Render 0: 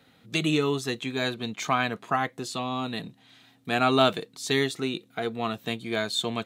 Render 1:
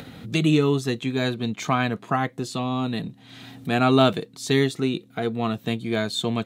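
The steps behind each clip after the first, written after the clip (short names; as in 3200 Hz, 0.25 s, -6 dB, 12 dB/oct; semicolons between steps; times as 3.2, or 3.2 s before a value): low shelf 360 Hz +10 dB; upward compressor, threshold -29 dBFS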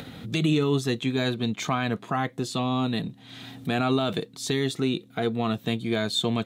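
bell 3500 Hz +3.5 dB 0.25 oct; limiter -14 dBFS, peak gain reduction 11 dB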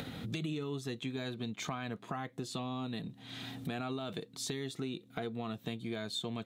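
compressor 4:1, threshold -35 dBFS, peak gain reduction 13.5 dB; gain -2 dB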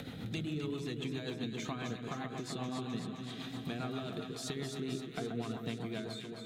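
ending faded out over 0.53 s; echo with dull and thin repeats by turns 0.13 s, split 1600 Hz, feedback 85%, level -5 dB; rotary speaker horn 7.5 Hz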